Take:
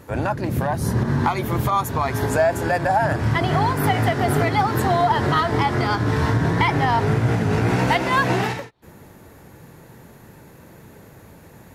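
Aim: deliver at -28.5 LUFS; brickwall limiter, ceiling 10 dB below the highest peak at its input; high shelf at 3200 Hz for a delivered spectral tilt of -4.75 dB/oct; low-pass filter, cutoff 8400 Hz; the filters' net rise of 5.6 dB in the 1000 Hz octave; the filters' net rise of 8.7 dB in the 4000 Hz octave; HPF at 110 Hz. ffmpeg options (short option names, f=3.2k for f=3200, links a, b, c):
-af "highpass=110,lowpass=8.4k,equalizer=f=1k:t=o:g=6,highshelf=f=3.2k:g=8.5,equalizer=f=4k:t=o:g=5,volume=-9.5dB,alimiter=limit=-18dB:level=0:latency=1"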